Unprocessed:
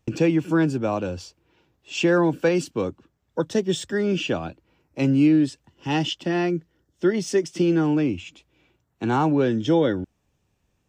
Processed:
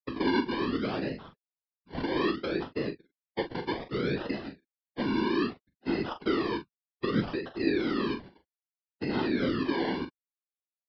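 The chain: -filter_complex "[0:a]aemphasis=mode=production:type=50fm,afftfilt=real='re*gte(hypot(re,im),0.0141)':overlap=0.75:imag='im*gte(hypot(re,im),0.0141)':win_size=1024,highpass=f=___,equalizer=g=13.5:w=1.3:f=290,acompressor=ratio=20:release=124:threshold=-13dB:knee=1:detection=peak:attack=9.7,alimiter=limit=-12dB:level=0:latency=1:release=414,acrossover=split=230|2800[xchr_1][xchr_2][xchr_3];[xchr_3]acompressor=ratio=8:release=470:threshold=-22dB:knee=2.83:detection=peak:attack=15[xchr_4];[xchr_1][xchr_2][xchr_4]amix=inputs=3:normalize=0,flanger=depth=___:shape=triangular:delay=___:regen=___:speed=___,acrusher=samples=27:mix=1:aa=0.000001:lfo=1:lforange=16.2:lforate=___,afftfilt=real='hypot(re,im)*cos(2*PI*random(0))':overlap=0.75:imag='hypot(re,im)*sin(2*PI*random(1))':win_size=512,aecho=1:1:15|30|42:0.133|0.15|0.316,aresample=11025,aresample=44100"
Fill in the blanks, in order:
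140, 3.7, 1.8, 56, 0.5, 0.63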